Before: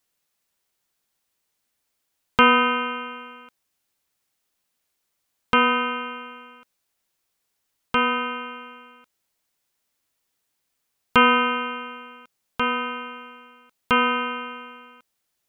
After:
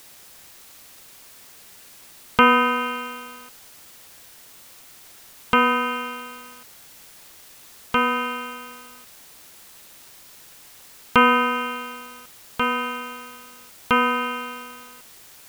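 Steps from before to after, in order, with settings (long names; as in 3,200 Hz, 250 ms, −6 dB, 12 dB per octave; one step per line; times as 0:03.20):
treble cut that deepens with the level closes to 2,700 Hz
bit-depth reduction 8 bits, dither triangular
level +1 dB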